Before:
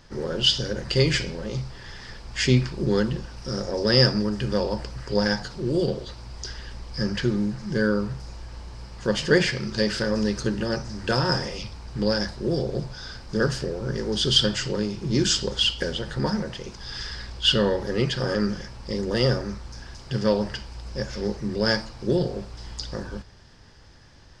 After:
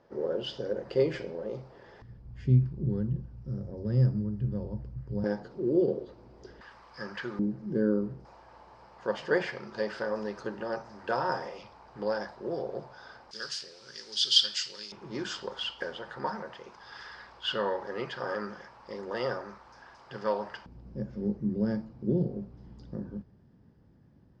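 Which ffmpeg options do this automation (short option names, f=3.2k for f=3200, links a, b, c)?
-af "asetnsamples=n=441:p=0,asendcmd='2.02 bandpass f 110;5.24 bandpass f 380;6.61 bandpass f 1100;7.39 bandpass f 310;8.25 bandpass f 830;13.31 bandpass f 4400;14.92 bandpass f 990;20.66 bandpass f 200',bandpass=f=520:t=q:w=1.5:csg=0"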